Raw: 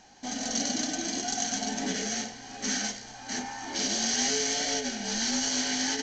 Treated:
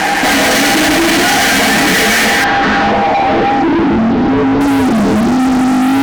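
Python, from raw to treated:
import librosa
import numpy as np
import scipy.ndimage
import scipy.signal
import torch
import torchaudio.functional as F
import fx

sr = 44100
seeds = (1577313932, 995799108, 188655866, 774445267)

y = scipy.signal.sosfilt(scipy.signal.butter(4, 180.0, 'highpass', fs=sr, output='sos'), x)
y = fx.hum_notches(y, sr, base_hz=50, count=5)
y = y + 0.74 * np.pad(y, (int(6.2 * sr / 1000.0), 0))[:len(y)]
y = 10.0 ** (-26.0 / 20.0) * np.tanh(y / 10.0 ** (-26.0 / 20.0))
y = fx.filter_sweep_lowpass(y, sr, from_hz=2100.0, to_hz=270.0, start_s=2.36, end_s=3.91, q=2.2)
y = fx.fuzz(y, sr, gain_db=54.0, gate_db=-59.0)
y = fx.air_absorb(y, sr, metres=200.0, at=(2.44, 4.61))
y = fx.env_flatten(y, sr, amount_pct=50)
y = F.gain(torch.from_numpy(y), 3.5).numpy()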